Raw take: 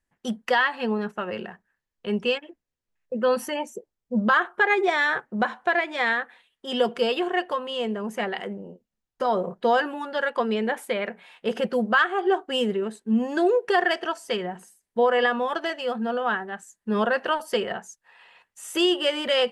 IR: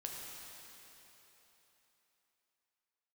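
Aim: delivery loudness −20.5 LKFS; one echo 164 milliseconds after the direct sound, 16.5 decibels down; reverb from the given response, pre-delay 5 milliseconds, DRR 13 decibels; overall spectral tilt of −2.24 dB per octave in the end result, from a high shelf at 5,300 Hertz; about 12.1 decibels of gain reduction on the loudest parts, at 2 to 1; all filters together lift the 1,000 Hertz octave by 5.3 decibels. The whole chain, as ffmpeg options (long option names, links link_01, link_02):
-filter_complex "[0:a]equalizer=frequency=1000:width_type=o:gain=7.5,highshelf=frequency=5300:gain=-8,acompressor=threshold=-35dB:ratio=2,aecho=1:1:164:0.15,asplit=2[link_01][link_02];[1:a]atrim=start_sample=2205,adelay=5[link_03];[link_02][link_03]afir=irnorm=-1:irlink=0,volume=-12dB[link_04];[link_01][link_04]amix=inputs=2:normalize=0,volume=11.5dB"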